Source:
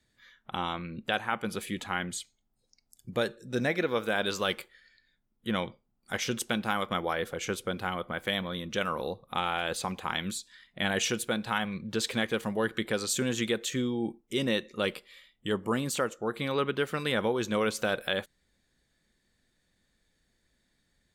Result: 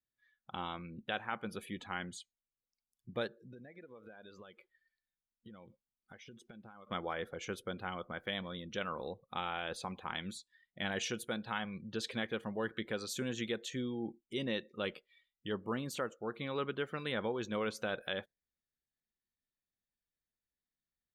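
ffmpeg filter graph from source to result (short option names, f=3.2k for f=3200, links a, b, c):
-filter_complex "[0:a]asettb=1/sr,asplit=3[a][b][c];[a]atrim=end=3.274[d];[b]atrim=start=3.27:end=6.87,asetpts=PTS-STARTPTS,afade=t=in:d=0.004:c=qsin,afade=t=out:st=3.596:d=0.004:c=qsin,highshelf=f=5k:g=-7.5,acompressor=threshold=-40dB:ratio=16:attack=3.2:release=140:knee=1:detection=peak[e];[c]atrim=start=6.866[f];[d][e]acrossfade=d=0.004:c1=hsin:c2=qsin[g];[g][f]acrossfade=d=0.004:c1=qsin:c2=hsin,afftdn=nr=18:nf=-46,equalizer=f=7.9k:w=3:g=-8,volume=-8dB"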